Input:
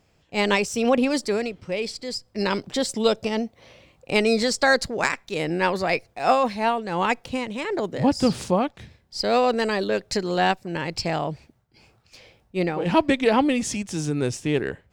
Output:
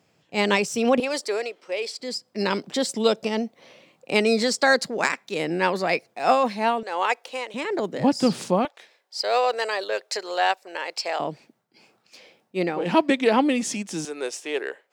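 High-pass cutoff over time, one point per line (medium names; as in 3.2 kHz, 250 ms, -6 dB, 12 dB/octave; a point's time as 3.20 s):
high-pass 24 dB/octave
120 Hz
from 1.00 s 390 Hz
from 2.00 s 170 Hz
from 6.83 s 430 Hz
from 7.54 s 160 Hz
from 8.65 s 480 Hz
from 11.20 s 190 Hz
from 14.05 s 420 Hz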